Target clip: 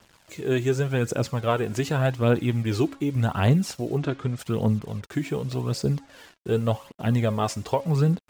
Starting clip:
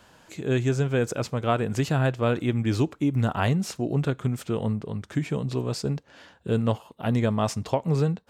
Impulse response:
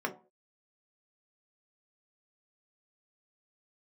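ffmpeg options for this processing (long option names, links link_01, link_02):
-filter_complex "[0:a]bandreject=frequency=275.2:width_type=h:width=4,bandreject=frequency=550.4:width_type=h:width=4,bandreject=frequency=825.6:width_type=h:width=4,bandreject=frequency=1100.8:width_type=h:width=4,bandreject=frequency=1376:width_type=h:width=4,bandreject=frequency=1651.2:width_type=h:width=4,bandreject=frequency=1926.4:width_type=h:width=4,bandreject=frequency=2201.6:width_type=h:width=4,bandreject=frequency=2476.8:width_type=h:width=4,bandreject=frequency=2752:width_type=h:width=4,bandreject=frequency=3027.2:width_type=h:width=4,bandreject=frequency=3302.4:width_type=h:width=4,bandreject=frequency=3577.6:width_type=h:width=4,bandreject=frequency=3852.8:width_type=h:width=4,bandreject=frequency=4128:width_type=h:width=4,bandreject=frequency=4403.2:width_type=h:width=4,bandreject=frequency=4678.4:width_type=h:width=4,bandreject=frequency=4953.6:width_type=h:width=4,bandreject=frequency=5228.8:width_type=h:width=4,bandreject=frequency=5504:width_type=h:width=4,bandreject=frequency=5779.2:width_type=h:width=4,bandreject=frequency=6054.4:width_type=h:width=4,bandreject=frequency=6329.6:width_type=h:width=4,bandreject=frequency=6604.8:width_type=h:width=4,bandreject=frequency=6880:width_type=h:width=4,bandreject=frequency=7155.2:width_type=h:width=4,bandreject=frequency=7430.4:width_type=h:width=4,bandreject=frequency=7705.6:width_type=h:width=4,bandreject=frequency=7980.8:width_type=h:width=4,bandreject=frequency=8256:width_type=h:width=4,bandreject=frequency=8531.2:width_type=h:width=4,bandreject=frequency=8806.4:width_type=h:width=4,bandreject=frequency=9081.6:width_type=h:width=4,bandreject=frequency=9356.8:width_type=h:width=4,bandreject=frequency=9632:width_type=h:width=4,bandreject=frequency=9907.2:width_type=h:width=4,bandreject=frequency=10182.4:width_type=h:width=4,acrusher=bits=7:mix=0:aa=0.5,aphaser=in_gain=1:out_gain=1:delay=3.2:decay=0.44:speed=0.86:type=triangular,asplit=3[link_01][link_02][link_03];[link_01]afade=type=out:start_time=3.97:duration=0.02[link_04];[link_02]lowpass=5600,afade=type=in:start_time=3.97:duration=0.02,afade=type=out:start_time=4.38:duration=0.02[link_05];[link_03]afade=type=in:start_time=4.38:duration=0.02[link_06];[link_04][link_05][link_06]amix=inputs=3:normalize=0"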